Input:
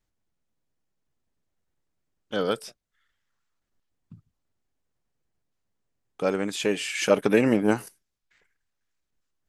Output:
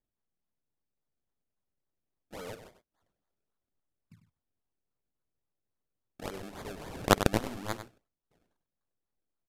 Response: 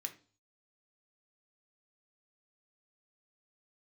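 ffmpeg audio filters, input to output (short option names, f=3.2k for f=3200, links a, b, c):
-filter_complex "[0:a]equalizer=f=1.4k:t=o:w=1.7:g=4,asplit=2[a][b];[b]acompressor=threshold=-30dB:ratio=6,volume=2.5dB[c];[a][c]amix=inputs=2:normalize=0,acrusher=samples=31:mix=1:aa=0.000001:lfo=1:lforange=31:lforate=3.6,aeval=exprs='0.841*(cos(1*acos(clip(val(0)/0.841,-1,1)))-cos(1*PI/2))+0.335*(cos(3*acos(clip(val(0)/0.841,-1,1)))-cos(3*PI/2))':c=same,asplit=2[d][e];[e]aecho=0:1:98:0.299[f];[d][f]amix=inputs=2:normalize=0,aresample=32000,aresample=44100,volume=-3.5dB"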